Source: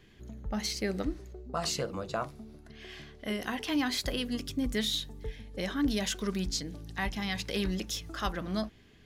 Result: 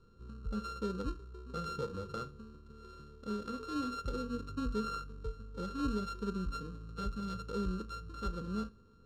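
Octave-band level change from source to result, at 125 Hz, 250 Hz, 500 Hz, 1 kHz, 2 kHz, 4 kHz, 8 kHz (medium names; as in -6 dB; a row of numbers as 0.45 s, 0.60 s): -3.0 dB, -5.5 dB, -5.0 dB, -2.5 dB, -13.5 dB, -16.0 dB, -18.5 dB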